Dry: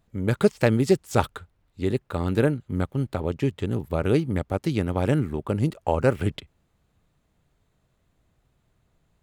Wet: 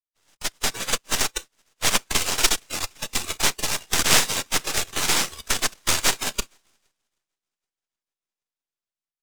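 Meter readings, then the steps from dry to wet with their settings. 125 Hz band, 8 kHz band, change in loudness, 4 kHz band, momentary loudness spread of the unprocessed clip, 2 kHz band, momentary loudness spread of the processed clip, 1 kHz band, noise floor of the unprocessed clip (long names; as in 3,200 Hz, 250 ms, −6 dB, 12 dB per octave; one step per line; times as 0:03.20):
−14.5 dB, +23.0 dB, +2.0 dB, +18.5 dB, 7 LU, +8.5 dB, 10 LU, +2.5 dB, −70 dBFS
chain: time-frequency cells dropped at random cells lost 22%
downward compressor 3 to 1, threshold −26 dBFS, peak gain reduction 10.5 dB
tilt shelving filter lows −8 dB, about 930 Hz
automatic gain control gain up to 16 dB
cochlear-implant simulation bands 1
notch filter 4,300 Hz, Q 19
feedback echo with a long and a short gap by turns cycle 780 ms, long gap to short 1.5 to 1, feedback 48%, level −23 dB
half-wave rectification
noise reduction from a noise print of the clip's start 12 dB
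multiband upward and downward expander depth 70%
level +3 dB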